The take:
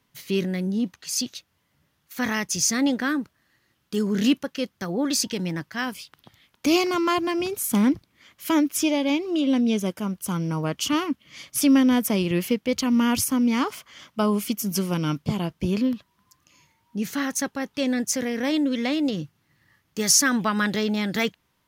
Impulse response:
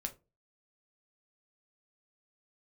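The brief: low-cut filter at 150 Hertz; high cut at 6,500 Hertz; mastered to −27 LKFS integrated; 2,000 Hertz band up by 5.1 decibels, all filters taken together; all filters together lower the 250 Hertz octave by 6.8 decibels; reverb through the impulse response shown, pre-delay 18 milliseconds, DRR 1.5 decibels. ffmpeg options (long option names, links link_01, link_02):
-filter_complex "[0:a]highpass=150,lowpass=6500,equalizer=frequency=250:width_type=o:gain=-7.5,equalizer=frequency=2000:width_type=o:gain=6.5,asplit=2[link_01][link_02];[1:a]atrim=start_sample=2205,adelay=18[link_03];[link_02][link_03]afir=irnorm=-1:irlink=0,volume=-0.5dB[link_04];[link_01][link_04]amix=inputs=2:normalize=0,volume=-3dB"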